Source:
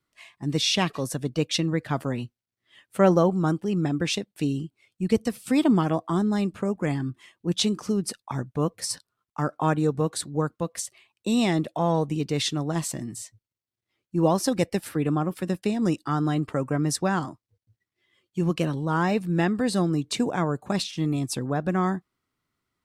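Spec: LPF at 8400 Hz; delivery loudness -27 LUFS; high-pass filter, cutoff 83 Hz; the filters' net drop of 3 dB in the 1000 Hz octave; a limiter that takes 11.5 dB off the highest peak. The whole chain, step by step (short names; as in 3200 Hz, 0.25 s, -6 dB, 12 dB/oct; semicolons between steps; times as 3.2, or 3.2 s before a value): HPF 83 Hz; LPF 8400 Hz; bell 1000 Hz -4 dB; gain +3.5 dB; limiter -16.5 dBFS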